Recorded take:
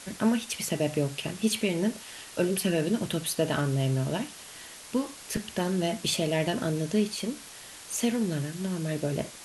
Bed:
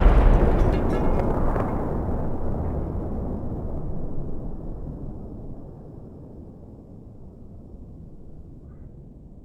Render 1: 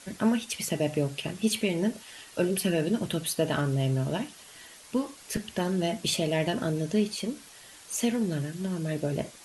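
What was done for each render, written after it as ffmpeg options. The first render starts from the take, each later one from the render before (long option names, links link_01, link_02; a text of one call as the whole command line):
ffmpeg -i in.wav -af "afftdn=noise_reduction=6:noise_floor=-46" out.wav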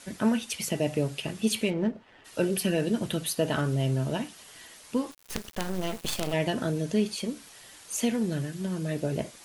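ffmpeg -i in.wav -filter_complex "[0:a]asplit=3[link_01][link_02][link_03];[link_01]afade=type=out:start_time=1.69:duration=0.02[link_04];[link_02]adynamicsmooth=sensitivity=2.5:basefreq=1300,afade=type=in:start_time=1.69:duration=0.02,afade=type=out:start_time=2.24:duration=0.02[link_05];[link_03]afade=type=in:start_time=2.24:duration=0.02[link_06];[link_04][link_05][link_06]amix=inputs=3:normalize=0,asplit=3[link_07][link_08][link_09];[link_07]afade=type=out:start_time=5.1:duration=0.02[link_10];[link_08]acrusher=bits=4:dc=4:mix=0:aa=0.000001,afade=type=in:start_time=5.1:duration=0.02,afade=type=out:start_time=6.32:duration=0.02[link_11];[link_09]afade=type=in:start_time=6.32:duration=0.02[link_12];[link_10][link_11][link_12]amix=inputs=3:normalize=0" out.wav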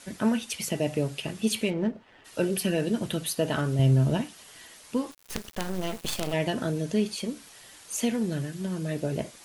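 ffmpeg -i in.wav -filter_complex "[0:a]asettb=1/sr,asplit=3[link_01][link_02][link_03];[link_01]atrim=end=3.794[link_04];[link_02]atrim=start=3.79:end=4.21,asetpts=PTS-STARTPTS,afade=type=in:duration=0.004:curve=qsin,afade=type=out:start_time=0.416:duration=0.004:curve=qsin,lowshelf=frequency=240:gain=9.5[link_05];[link_03]atrim=start=4.206[link_06];[link_04][link_05]acrossfade=duration=0.004:curve1=hsin:curve2=qsin[link_07];[link_07][link_06]acrossfade=duration=0.004:curve1=qsin:curve2=hsin" out.wav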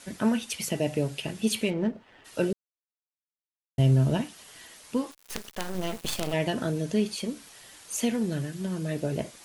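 ffmpeg -i in.wav -filter_complex "[0:a]asettb=1/sr,asplit=3[link_01][link_02][link_03];[link_01]atrim=end=0.794[link_04];[link_02]atrim=start=0.79:end=1.45,asetpts=PTS-STARTPTS,afade=type=in:duration=0.004:curve=qsin,afade=type=out:start_time=0.656:duration=0.004:curve=qsin,bandreject=frequency=1200:width=11[link_05];[link_03]atrim=start=1.446[link_06];[link_04][link_05]acrossfade=duration=0.004:curve1=hsin:curve2=qsin[link_07];[link_07][link_06]acrossfade=duration=0.004:curve1=qsin:curve2=hsin,asettb=1/sr,asplit=3[link_08][link_09][link_10];[link_08]atrim=end=5.044[link_11];[link_09]atrim=start=5.04:end=5.75,asetpts=PTS-STARTPTS,afade=type=in:duration=0.004:curve=qsin,afade=type=out:start_time=0.706:duration=0.004:curve=qsin,equalizer=frequency=68:width=0.31:gain=-8[link_12];[link_10]atrim=start=5.746[link_13];[link_11][link_12]acrossfade=duration=0.004:curve1=hsin:curve2=qsin[link_14];[link_14][link_13]acrossfade=duration=0.004:curve1=qsin:curve2=hsin,asplit=3[link_15][link_16][link_17];[link_15]atrim=end=2.53,asetpts=PTS-STARTPTS,afade=type=out:start_time=2.526:duration=0.004:curve=hsin[link_18];[link_16]atrim=start=2.53:end=3.78,asetpts=PTS-STARTPTS,volume=0[link_19];[link_17]atrim=start=3.78,asetpts=PTS-STARTPTS,afade=type=in:duration=0.004:curve=hsin[link_20];[link_18][link_19][link_20]concat=n=3:v=0:a=1" out.wav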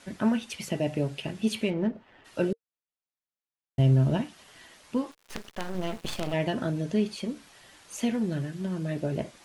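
ffmpeg -i in.wav -af "lowpass=frequency=3100:poles=1,bandreject=frequency=460:width=14" out.wav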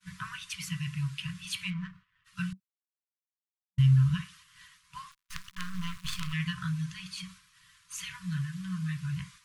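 ffmpeg -i in.wav -af "afftfilt=real='re*(1-between(b*sr/4096,190,970))':imag='im*(1-between(b*sr/4096,190,970))':win_size=4096:overlap=0.75,agate=range=-33dB:threshold=-48dB:ratio=3:detection=peak" out.wav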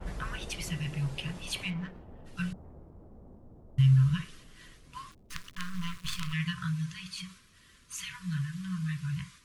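ffmpeg -i in.wav -i bed.wav -filter_complex "[1:a]volume=-23.5dB[link_01];[0:a][link_01]amix=inputs=2:normalize=0" out.wav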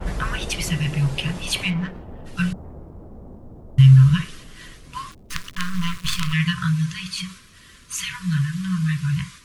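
ffmpeg -i in.wav -af "volume=11.5dB" out.wav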